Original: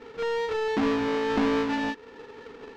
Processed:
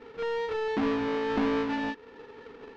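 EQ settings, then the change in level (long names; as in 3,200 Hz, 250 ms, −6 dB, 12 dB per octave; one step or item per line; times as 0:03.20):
high-frequency loss of the air 84 metres
−2.5 dB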